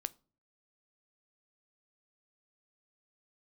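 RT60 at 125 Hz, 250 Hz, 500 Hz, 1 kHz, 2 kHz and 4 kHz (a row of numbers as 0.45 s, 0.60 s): 0.70 s, 0.55 s, 0.45 s, 0.35 s, 0.25 s, 0.30 s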